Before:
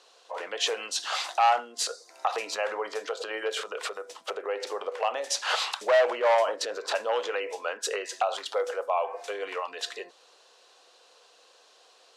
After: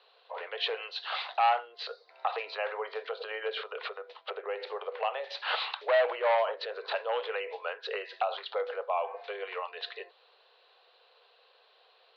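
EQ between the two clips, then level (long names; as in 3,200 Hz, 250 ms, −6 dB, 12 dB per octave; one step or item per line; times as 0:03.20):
Chebyshev band-pass filter 410–4,200 Hz, order 4
high-frequency loss of the air 230 metres
high-shelf EQ 3,100 Hz +10 dB
−3.0 dB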